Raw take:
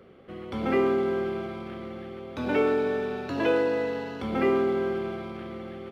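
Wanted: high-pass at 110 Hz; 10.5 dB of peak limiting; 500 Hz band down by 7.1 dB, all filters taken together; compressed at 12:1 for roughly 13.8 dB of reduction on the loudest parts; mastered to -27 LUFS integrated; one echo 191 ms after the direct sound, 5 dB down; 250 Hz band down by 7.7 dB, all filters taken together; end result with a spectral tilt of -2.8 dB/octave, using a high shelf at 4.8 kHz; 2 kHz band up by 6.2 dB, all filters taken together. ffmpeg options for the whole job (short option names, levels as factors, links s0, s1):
-af "highpass=110,equalizer=f=250:t=o:g=-7.5,equalizer=f=500:t=o:g=-6.5,equalizer=f=2000:t=o:g=7,highshelf=f=4800:g=7.5,acompressor=threshold=0.0158:ratio=12,alimiter=level_in=3.35:limit=0.0631:level=0:latency=1,volume=0.299,aecho=1:1:191:0.562,volume=5.01"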